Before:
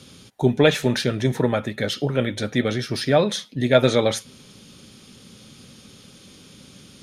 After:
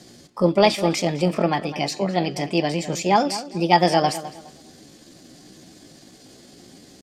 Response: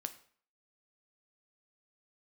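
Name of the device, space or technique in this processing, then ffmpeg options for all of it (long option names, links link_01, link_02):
chipmunk voice: -filter_complex "[0:a]asetrate=60591,aresample=44100,atempo=0.727827,lowpass=8800,asplit=2[link_01][link_02];[link_02]adelay=207,lowpass=frequency=3600:poles=1,volume=-14dB,asplit=2[link_03][link_04];[link_04]adelay=207,lowpass=frequency=3600:poles=1,volume=0.27,asplit=2[link_05][link_06];[link_06]adelay=207,lowpass=frequency=3600:poles=1,volume=0.27[link_07];[link_01][link_03][link_05][link_07]amix=inputs=4:normalize=0"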